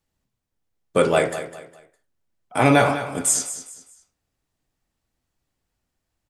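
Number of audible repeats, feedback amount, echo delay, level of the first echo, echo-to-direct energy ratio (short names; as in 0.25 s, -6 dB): 3, 32%, 0.204 s, -12.0 dB, -11.5 dB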